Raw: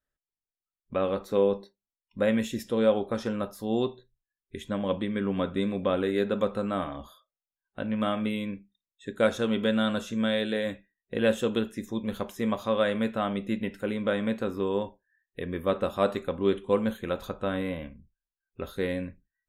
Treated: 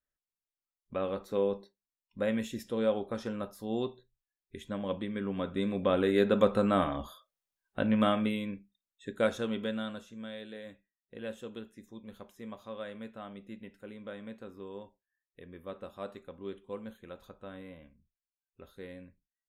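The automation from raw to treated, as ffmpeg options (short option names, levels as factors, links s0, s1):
-af "volume=1.41,afade=t=in:st=5.42:d=1.14:silence=0.354813,afade=t=out:st=7.89:d=0.52:silence=0.473151,afade=t=out:st=9.1:d=0.98:silence=0.237137"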